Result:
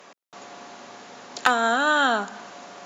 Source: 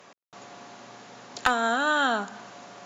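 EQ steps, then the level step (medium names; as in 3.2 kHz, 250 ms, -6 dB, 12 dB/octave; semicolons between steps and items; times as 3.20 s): high-pass 190 Hz 12 dB/octave; +3.5 dB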